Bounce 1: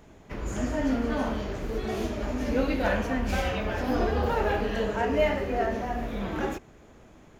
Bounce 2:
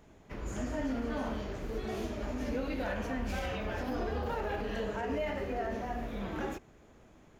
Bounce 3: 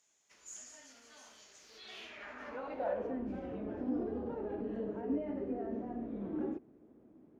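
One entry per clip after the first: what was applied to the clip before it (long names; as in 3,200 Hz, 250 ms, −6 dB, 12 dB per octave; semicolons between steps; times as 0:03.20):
brickwall limiter −20 dBFS, peak gain reduction 7 dB; level −6 dB
band-pass filter sweep 6,900 Hz → 290 Hz, 0:01.54–0:03.29; level +4.5 dB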